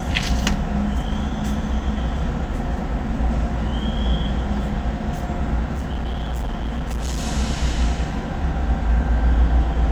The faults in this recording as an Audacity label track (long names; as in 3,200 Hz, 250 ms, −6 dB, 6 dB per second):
5.730000	7.250000	clipping −21.5 dBFS